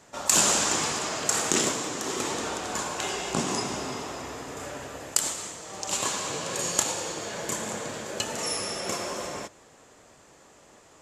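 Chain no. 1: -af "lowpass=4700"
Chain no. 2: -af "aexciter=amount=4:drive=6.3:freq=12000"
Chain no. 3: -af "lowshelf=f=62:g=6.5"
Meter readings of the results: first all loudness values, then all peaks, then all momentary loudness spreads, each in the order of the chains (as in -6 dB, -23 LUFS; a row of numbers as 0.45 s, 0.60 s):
-31.0 LUFS, -27.5 LUFS, -27.5 LUFS; -7.5 dBFS, -3.0 dBFS, -3.5 dBFS; 11 LU, 14 LU, 14 LU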